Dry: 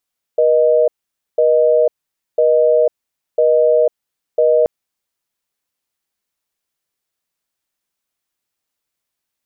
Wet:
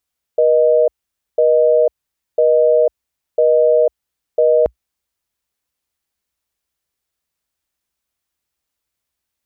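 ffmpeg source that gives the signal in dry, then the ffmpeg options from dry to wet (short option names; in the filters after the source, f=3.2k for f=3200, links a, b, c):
-f lavfi -i "aevalsrc='0.251*(sin(2*PI*480*t)+sin(2*PI*620*t))*clip(min(mod(t,1),0.5-mod(t,1))/0.005,0,1)':d=4.28:s=44100"
-af "equalizer=f=60:w=1.4:g=13.5"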